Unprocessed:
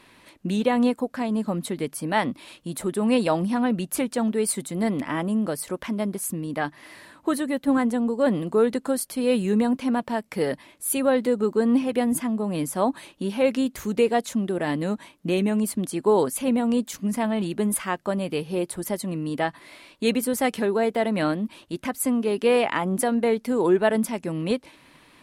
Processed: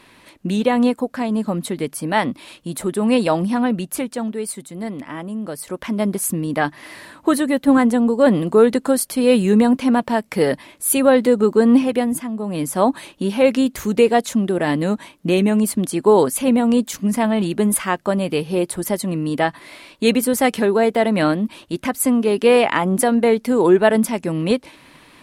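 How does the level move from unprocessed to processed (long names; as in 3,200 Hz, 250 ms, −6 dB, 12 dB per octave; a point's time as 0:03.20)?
0:03.62 +4.5 dB
0:04.59 −3.5 dB
0:05.37 −3.5 dB
0:06.08 +7.5 dB
0:11.81 +7.5 dB
0:12.28 −1 dB
0:12.79 +6.5 dB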